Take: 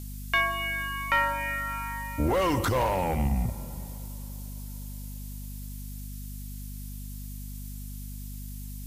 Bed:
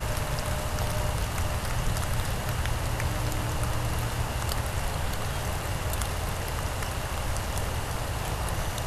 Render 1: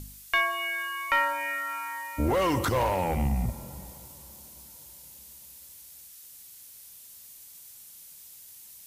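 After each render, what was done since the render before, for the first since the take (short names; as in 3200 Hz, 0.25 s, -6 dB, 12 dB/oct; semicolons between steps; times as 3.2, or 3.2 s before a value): de-hum 50 Hz, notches 5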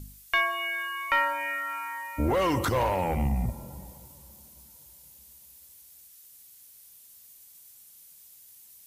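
denoiser 6 dB, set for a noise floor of -49 dBFS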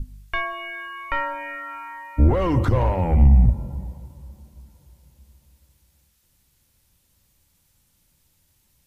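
RIAA curve playback; notches 50/100/150/200 Hz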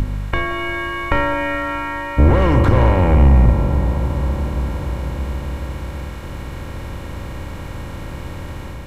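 per-bin compression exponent 0.4; AGC gain up to 3.5 dB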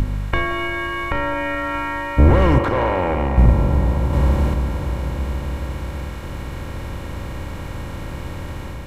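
0.66–1.74 compressor 2:1, threshold -20 dBFS; 2.58–3.38 tone controls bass -13 dB, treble -6 dB; 4.13–4.54 gain +3.5 dB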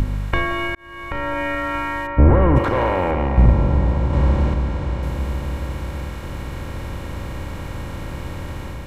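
0.75–1.41 fade in; 2.06–2.55 LPF 2000 Hz -> 1400 Hz; 3.11–5.03 air absorption 71 m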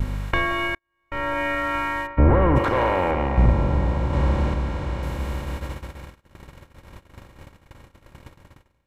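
gate -25 dBFS, range -37 dB; low shelf 420 Hz -4.5 dB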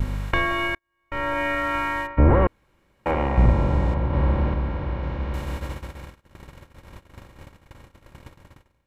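2.47–3.06 room tone; 3.94–5.34 air absorption 260 m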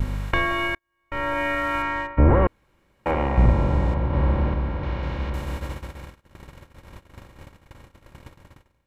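1.82–2.45 air absorption 65 m; 4.83–5.3 high shelf 2400 Hz +9.5 dB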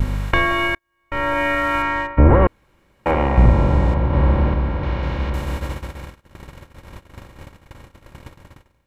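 gain +5 dB; limiter -3 dBFS, peak gain reduction 2 dB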